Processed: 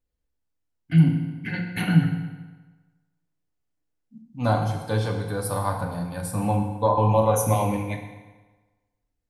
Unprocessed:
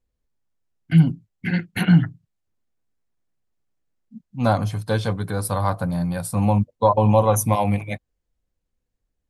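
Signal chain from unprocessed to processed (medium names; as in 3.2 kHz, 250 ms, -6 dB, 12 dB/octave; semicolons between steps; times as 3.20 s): FDN reverb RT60 1.3 s, low-frequency decay 0.9×, high-frequency decay 0.8×, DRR 1.5 dB; trim -5 dB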